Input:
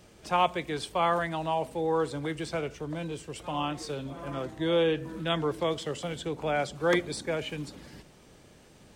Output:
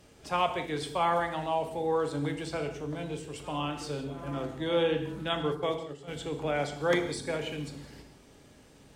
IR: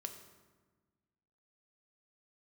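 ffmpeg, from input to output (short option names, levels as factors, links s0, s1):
-filter_complex "[0:a]asplit=3[s0][s1][s2];[s0]afade=t=out:st=5.41:d=0.02[s3];[s1]agate=range=0.178:threshold=0.0355:ratio=16:detection=peak,afade=t=in:st=5.41:d=0.02,afade=t=out:st=6.07:d=0.02[s4];[s2]afade=t=in:st=6.07:d=0.02[s5];[s3][s4][s5]amix=inputs=3:normalize=0[s6];[1:a]atrim=start_sample=2205,atrim=end_sample=6174,asetrate=30870,aresample=44100[s7];[s6][s7]afir=irnorm=-1:irlink=0"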